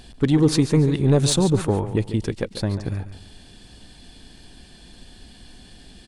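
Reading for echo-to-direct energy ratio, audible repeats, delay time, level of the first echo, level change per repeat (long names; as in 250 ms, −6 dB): −11.5 dB, 3, 142 ms, −12.0 dB, −10.5 dB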